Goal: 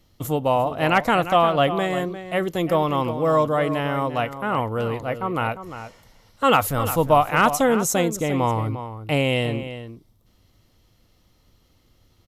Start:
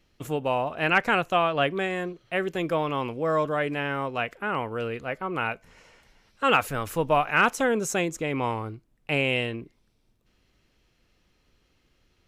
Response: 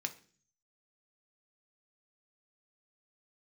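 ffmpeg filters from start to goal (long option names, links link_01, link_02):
-filter_complex "[0:a]equalizer=frequency=100:width_type=o:width=0.33:gain=8,equalizer=frequency=400:width_type=o:width=0.33:gain=-5,equalizer=frequency=1600:width_type=o:width=0.33:gain=-9,equalizer=frequency=2500:width_type=o:width=0.33:gain=-10,equalizer=frequency=12500:width_type=o:width=0.33:gain=10,asplit=2[link_01][link_02];[link_02]adelay=349.9,volume=-11dB,highshelf=frequency=4000:gain=-7.87[link_03];[link_01][link_03]amix=inputs=2:normalize=0,volume=6.5dB"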